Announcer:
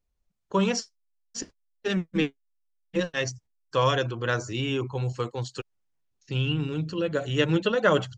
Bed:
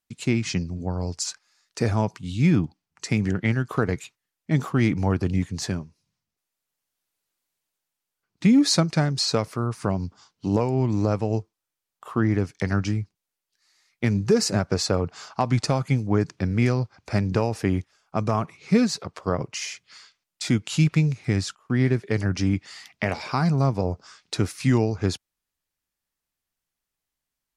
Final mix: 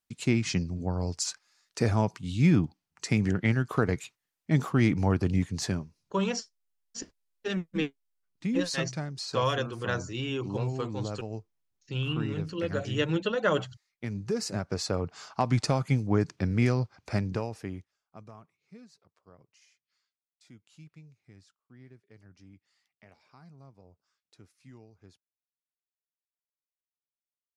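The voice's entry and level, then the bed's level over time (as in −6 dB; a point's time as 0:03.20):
5.60 s, −4.5 dB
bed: 0:05.86 −2.5 dB
0:06.40 −13 dB
0:14.02 −13 dB
0:15.42 −3.5 dB
0:17.06 −3.5 dB
0:18.67 −31.5 dB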